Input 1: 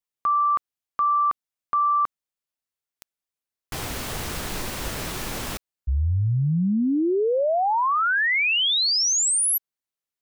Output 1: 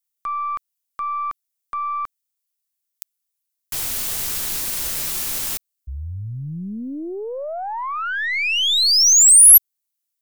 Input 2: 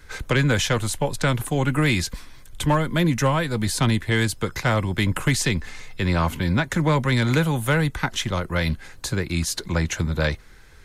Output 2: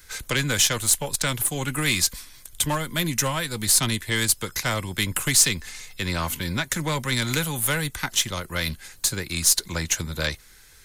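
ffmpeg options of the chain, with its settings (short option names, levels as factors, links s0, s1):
-af "crystalizer=i=6:c=0,aeval=exprs='1.19*(cos(1*acos(clip(val(0)/1.19,-1,1)))-cos(1*PI/2))+0.15*(cos(3*acos(clip(val(0)/1.19,-1,1)))-cos(3*PI/2))+0.0188*(cos(5*acos(clip(val(0)/1.19,-1,1)))-cos(5*PI/2))+0.0106*(cos(7*acos(clip(val(0)/1.19,-1,1)))-cos(7*PI/2))+0.0266*(cos(8*acos(clip(val(0)/1.19,-1,1)))-cos(8*PI/2))':c=same,volume=0.631"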